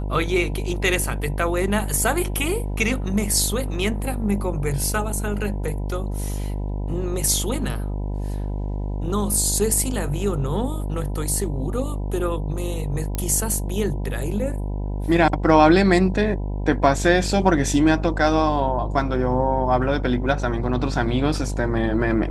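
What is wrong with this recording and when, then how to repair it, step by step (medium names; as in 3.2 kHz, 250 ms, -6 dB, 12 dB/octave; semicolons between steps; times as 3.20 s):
buzz 50 Hz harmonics 20 -26 dBFS
13.15 s: pop -12 dBFS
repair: de-click; de-hum 50 Hz, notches 20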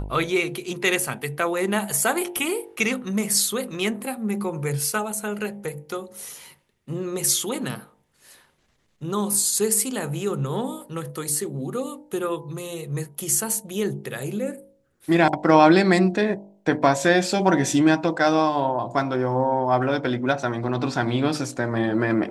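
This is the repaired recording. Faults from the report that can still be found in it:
nothing left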